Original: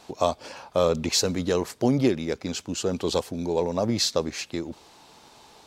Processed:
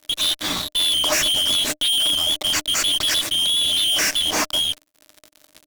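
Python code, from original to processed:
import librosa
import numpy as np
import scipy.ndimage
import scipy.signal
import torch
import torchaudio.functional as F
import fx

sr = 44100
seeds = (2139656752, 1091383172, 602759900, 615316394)

y = fx.band_shuffle(x, sr, order='2413')
y = fx.fuzz(y, sr, gain_db=43.0, gate_db=-44.0)
y = fx.small_body(y, sr, hz=(300.0, 610.0), ring_ms=70, db=12)
y = F.gain(torch.from_numpy(y), -5.0).numpy()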